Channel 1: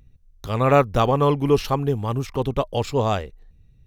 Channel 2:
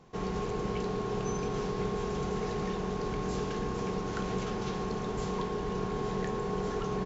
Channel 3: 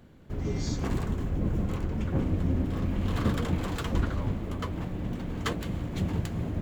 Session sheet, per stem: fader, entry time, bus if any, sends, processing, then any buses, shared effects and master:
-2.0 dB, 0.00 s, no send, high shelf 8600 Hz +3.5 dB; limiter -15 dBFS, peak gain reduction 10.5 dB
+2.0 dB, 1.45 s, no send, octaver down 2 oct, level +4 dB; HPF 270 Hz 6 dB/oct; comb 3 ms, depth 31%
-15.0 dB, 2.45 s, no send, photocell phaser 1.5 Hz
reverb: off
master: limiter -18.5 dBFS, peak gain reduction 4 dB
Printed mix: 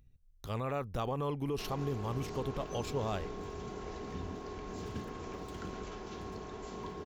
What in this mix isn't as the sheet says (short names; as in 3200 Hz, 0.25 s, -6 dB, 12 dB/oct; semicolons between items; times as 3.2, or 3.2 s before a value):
stem 1 -2.0 dB -> -11.0 dB; stem 2 +2.0 dB -> -9.0 dB; stem 3: entry 2.45 s -> 1.70 s